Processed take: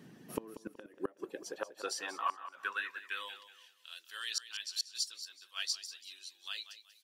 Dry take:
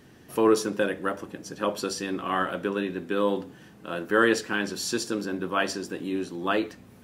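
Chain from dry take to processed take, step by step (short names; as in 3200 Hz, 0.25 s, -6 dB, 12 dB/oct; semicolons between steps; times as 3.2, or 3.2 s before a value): reverb removal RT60 0.6 s; high-pass sweep 170 Hz -> 4000 Hz, 0.18–3.95; flipped gate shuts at -16 dBFS, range -29 dB; on a send: feedback echo 0.187 s, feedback 31%, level -13 dB; 5.12–5.66 on the sum: three-band expander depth 40%; gain -5 dB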